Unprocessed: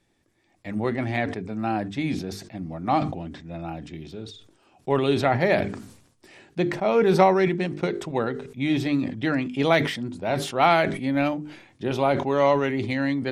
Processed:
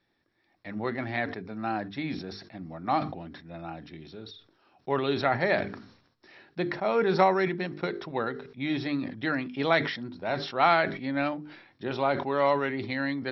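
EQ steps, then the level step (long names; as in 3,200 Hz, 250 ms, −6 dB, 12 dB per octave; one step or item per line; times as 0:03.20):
Chebyshev low-pass with heavy ripple 5,600 Hz, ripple 6 dB
low-shelf EQ 91 Hz −7.5 dB
0.0 dB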